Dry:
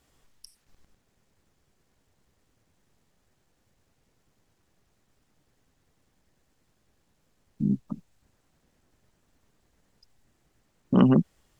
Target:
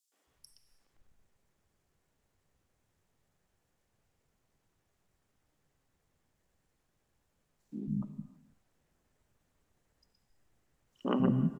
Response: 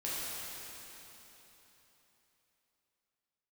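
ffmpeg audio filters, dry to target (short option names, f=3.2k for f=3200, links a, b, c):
-filter_complex "[0:a]acrossover=split=250|4400[a][b][c];[b]adelay=120[d];[a]adelay=270[e];[e][d][c]amix=inputs=3:normalize=0,asplit=2[f][g];[1:a]atrim=start_sample=2205,afade=t=out:st=0.38:d=0.01,atrim=end_sample=17199[h];[g][h]afir=irnorm=-1:irlink=0,volume=-12.5dB[i];[f][i]amix=inputs=2:normalize=0,volume=-7.5dB"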